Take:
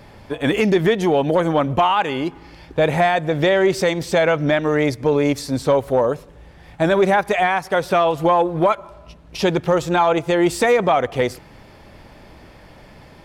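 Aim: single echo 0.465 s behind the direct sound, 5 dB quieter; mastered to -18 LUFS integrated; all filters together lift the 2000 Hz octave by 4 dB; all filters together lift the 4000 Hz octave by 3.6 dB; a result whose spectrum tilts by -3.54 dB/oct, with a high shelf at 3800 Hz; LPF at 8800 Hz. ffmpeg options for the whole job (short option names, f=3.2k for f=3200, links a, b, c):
-af "lowpass=8.8k,equalizer=f=2k:t=o:g=5,highshelf=f=3.8k:g=-8,equalizer=f=4k:t=o:g=7.5,aecho=1:1:465:0.562,volume=-1dB"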